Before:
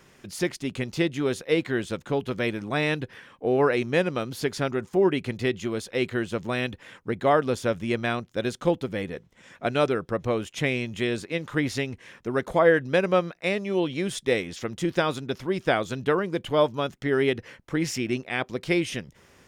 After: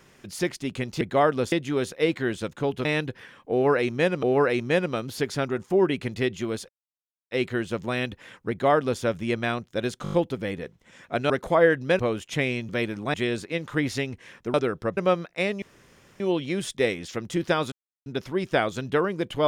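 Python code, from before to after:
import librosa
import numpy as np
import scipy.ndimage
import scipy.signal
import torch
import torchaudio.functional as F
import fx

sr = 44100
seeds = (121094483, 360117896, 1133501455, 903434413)

y = fx.edit(x, sr, fx.move(start_s=2.34, length_s=0.45, to_s=10.94),
    fx.repeat(start_s=3.46, length_s=0.71, count=2),
    fx.insert_silence(at_s=5.92, length_s=0.62),
    fx.duplicate(start_s=7.11, length_s=0.51, to_s=1.01),
    fx.stutter(start_s=8.64, slice_s=0.02, count=6),
    fx.swap(start_s=9.81, length_s=0.43, other_s=12.34, other_length_s=0.69),
    fx.insert_room_tone(at_s=13.68, length_s=0.58),
    fx.insert_silence(at_s=15.2, length_s=0.34), tone=tone)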